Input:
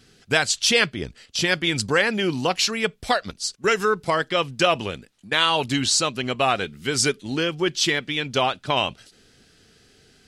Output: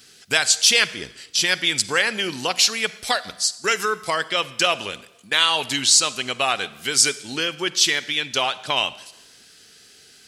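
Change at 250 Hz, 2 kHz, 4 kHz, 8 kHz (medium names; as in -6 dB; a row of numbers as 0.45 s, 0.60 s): -6.5 dB, +1.5 dB, +4.0 dB, +6.5 dB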